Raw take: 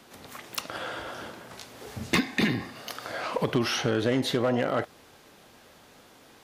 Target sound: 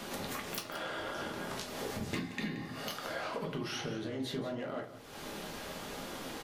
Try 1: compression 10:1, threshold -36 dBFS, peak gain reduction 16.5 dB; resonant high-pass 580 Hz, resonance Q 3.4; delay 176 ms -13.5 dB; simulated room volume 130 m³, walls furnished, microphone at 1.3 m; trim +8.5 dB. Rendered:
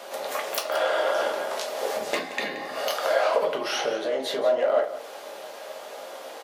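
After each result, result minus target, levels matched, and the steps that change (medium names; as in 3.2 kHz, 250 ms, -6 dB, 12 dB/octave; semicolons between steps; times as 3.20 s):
compression: peak gain reduction -10.5 dB; 500 Hz band +3.5 dB
change: compression 10:1, threshold -47.5 dBFS, peak gain reduction 26.5 dB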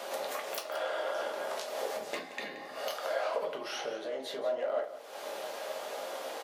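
500 Hz band +4.5 dB
remove: resonant high-pass 580 Hz, resonance Q 3.4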